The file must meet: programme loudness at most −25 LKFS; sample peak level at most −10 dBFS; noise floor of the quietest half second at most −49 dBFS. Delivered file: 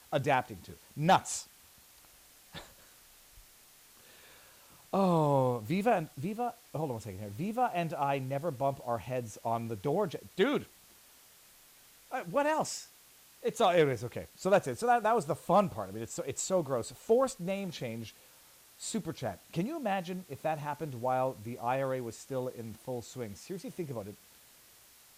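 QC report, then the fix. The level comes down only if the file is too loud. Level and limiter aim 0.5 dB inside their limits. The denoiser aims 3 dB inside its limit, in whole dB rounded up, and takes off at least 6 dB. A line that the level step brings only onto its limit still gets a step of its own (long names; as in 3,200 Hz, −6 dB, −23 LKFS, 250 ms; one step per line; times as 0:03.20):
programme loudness −32.5 LKFS: in spec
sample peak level −15.0 dBFS: in spec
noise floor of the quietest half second −59 dBFS: in spec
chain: no processing needed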